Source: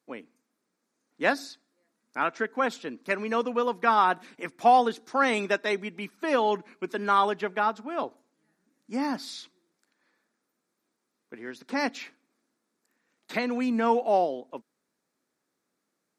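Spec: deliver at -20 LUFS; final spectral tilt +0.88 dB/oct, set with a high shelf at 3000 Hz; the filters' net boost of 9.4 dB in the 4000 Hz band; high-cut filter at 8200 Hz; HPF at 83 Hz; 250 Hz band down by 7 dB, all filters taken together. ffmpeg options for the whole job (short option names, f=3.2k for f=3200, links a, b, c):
-af "highpass=83,lowpass=8.2k,equalizer=f=250:t=o:g=-8,highshelf=f=3k:g=5,equalizer=f=4k:t=o:g=8,volume=6.5dB"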